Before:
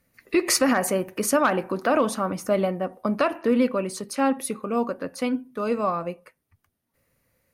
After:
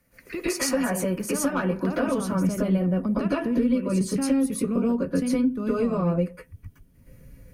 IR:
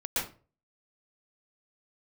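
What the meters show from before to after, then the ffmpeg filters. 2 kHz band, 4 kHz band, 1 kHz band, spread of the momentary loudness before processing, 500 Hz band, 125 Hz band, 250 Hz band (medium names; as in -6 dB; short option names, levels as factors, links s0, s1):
-4.5 dB, -5.0 dB, -8.0 dB, 8 LU, -3.0 dB, +8.0 dB, +3.0 dB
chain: -filter_complex "[0:a]equalizer=f=3800:t=o:w=0.34:g=-4.5,acompressor=threshold=0.00708:ratio=2,asubboost=boost=9:cutoff=240[s0];[1:a]atrim=start_sample=2205,atrim=end_sample=6174[s1];[s0][s1]afir=irnorm=-1:irlink=0,acrossover=split=140|3000[s2][s3][s4];[s3]acompressor=threshold=0.0562:ratio=6[s5];[s2][s5][s4]amix=inputs=3:normalize=0,volume=1.68"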